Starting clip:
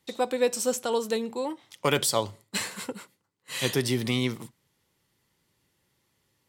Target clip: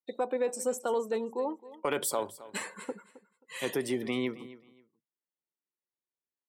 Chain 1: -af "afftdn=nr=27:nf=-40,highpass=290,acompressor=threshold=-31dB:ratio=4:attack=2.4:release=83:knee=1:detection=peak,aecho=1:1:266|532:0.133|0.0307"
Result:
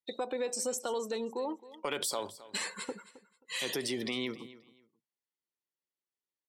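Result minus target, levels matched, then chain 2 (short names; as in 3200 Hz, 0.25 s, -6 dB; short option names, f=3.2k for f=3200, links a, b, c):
4000 Hz band +8.0 dB; compressor: peak gain reduction +5.5 dB
-af "afftdn=nr=27:nf=-40,highpass=290,equalizer=f=4.6k:t=o:w=1.5:g=-13.5,acompressor=threshold=-24.5dB:ratio=4:attack=2.4:release=83:knee=1:detection=peak,aecho=1:1:266|532:0.133|0.0307"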